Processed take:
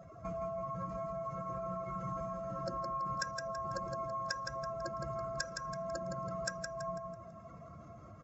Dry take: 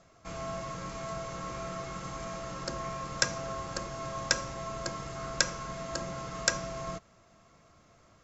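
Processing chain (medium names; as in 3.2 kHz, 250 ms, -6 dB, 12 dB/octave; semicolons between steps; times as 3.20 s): spectral contrast enhancement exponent 2.1; high-pass 58 Hz; compression 6:1, threshold -47 dBFS, peak gain reduction 24 dB; on a send: feedback delay 165 ms, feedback 37%, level -5 dB; on the sum: trim +8.5 dB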